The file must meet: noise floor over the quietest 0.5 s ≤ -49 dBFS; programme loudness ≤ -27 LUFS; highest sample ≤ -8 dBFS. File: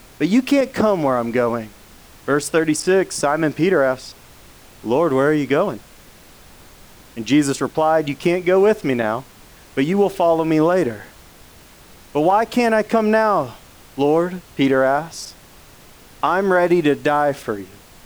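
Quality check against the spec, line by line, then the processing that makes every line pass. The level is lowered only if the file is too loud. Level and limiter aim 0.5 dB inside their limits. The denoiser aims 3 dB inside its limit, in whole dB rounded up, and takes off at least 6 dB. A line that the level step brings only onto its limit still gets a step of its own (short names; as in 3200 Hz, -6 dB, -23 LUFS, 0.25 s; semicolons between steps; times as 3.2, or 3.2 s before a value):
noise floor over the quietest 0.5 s -45 dBFS: fail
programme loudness -18.5 LUFS: fail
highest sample -6.0 dBFS: fail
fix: gain -9 dB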